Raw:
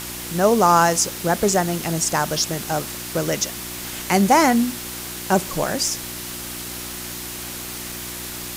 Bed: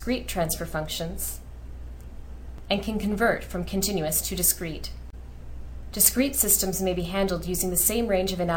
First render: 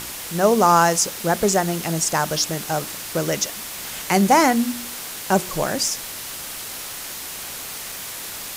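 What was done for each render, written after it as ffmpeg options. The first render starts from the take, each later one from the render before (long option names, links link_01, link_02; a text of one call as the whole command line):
ffmpeg -i in.wav -af "bandreject=frequency=60:width_type=h:width=4,bandreject=frequency=120:width_type=h:width=4,bandreject=frequency=180:width_type=h:width=4,bandreject=frequency=240:width_type=h:width=4,bandreject=frequency=300:width_type=h:width=4,bandreject=frequency=360:width_type=h:width=4" out.wav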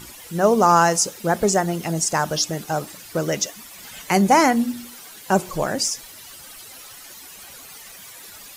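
ffmpeg -i in.wav -af "afftdn=noise_reduction=13:noise_floor=-33" out.wav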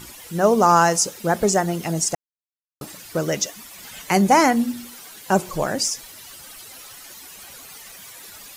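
ffmpeg -i in.wav -filter_complex "[0:a]asplit=3[link_01][link_02][link_03];[link_01]atrim=end=2.15,asetpts=PTS-STARTPTS,afade=type=out:start_time=2.146:duration=0.004:curve=hsin[link_04];[link_02]atrim=start=2.15:end=2.81,asetpts=PTS-STARTPTS,volume=0[link_05];[link_03]atrim=start=2.81,asetpts=PTS-STARTPTS,afade=type=in:duration=0.004:curve=hsin[link_06];[link_04][link_05][link_06]concat=n=3:v=0:a=1" out.wav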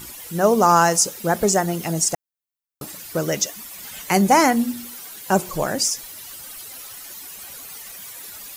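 ffmpeg -i in.wav -af "highshelf=frequency=11000:gain=9.5" out.wav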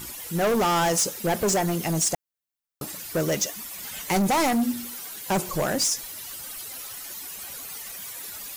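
ffmpeg -i in.wav -af "volume=19.5dB,asoftclip=hard,volume=-19.5dB" out.wav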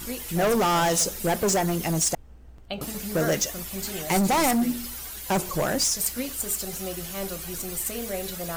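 ffmpeg -i in.wav -i bed.wav -filter_complex "[1:a]volume=-8.5dB[link_01];[0:a][link_01]amix=inputs=2:normalize=0" out.wav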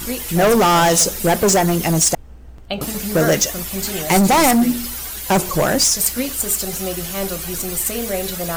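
ffmpeg -i in.wav -af "volume=8.5dB" out.wav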